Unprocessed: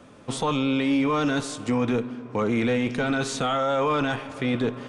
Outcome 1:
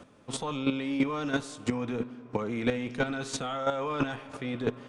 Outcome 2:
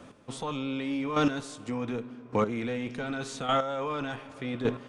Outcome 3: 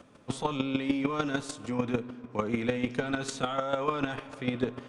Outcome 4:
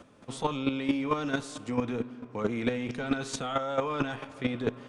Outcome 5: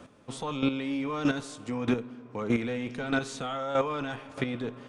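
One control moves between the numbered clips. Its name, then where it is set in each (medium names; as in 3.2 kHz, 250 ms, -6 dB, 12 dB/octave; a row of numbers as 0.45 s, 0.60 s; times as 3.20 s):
square tremolo, rate: 3 Hz, 0.86 Hz, 6.7 Hz, 4.5 Hz, 1.6 Hz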